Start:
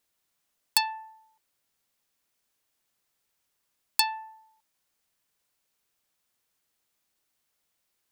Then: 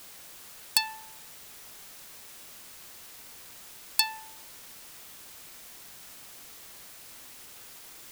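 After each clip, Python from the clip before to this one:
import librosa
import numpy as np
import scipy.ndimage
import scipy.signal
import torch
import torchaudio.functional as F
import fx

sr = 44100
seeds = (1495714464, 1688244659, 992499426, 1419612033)

y = fx.peak_eq(x, sr, hz=770.0, db=-7.0, octaves=1.4)
y = fx.quant_dither(y, sr, seeds[0], bits=8, dither='triangular')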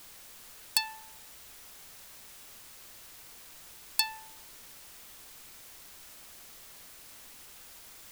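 y = fx.highpass(x, sr, hz=340.0, slope=6)
y = fx.dmg_noise_colour(y, sr, seeds[1], colour='pink', level_db=-61.0)
y = y * 10.0 ** (-3.0 / 20.0)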